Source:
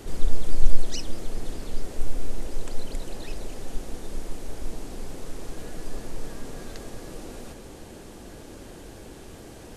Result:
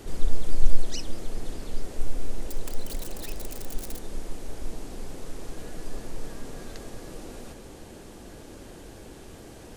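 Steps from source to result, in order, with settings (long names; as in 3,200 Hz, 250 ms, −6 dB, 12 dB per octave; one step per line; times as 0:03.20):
0:02.48–0:03.99: spike at every zero crossing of −26.5 dBFS
level −1.5 dB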